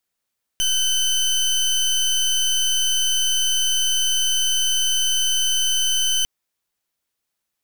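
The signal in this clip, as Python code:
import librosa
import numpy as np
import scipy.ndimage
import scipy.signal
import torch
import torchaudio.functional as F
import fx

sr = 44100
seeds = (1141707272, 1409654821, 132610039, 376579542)

y = fx.pulse(sr, length_s=5.65, hz=3040.0, level_db=-19.5, duty_pct=25)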